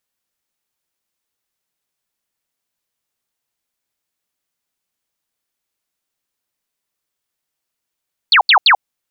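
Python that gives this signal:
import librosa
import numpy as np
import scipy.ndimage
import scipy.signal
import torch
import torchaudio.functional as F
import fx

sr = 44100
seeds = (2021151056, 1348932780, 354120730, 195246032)

y = fx.laser_zaps(sr, level_db=-6, start_hz=4700.0, end_hz=700.0, length_s=0.09, wave='sine', shots=3, gap_s=0.08)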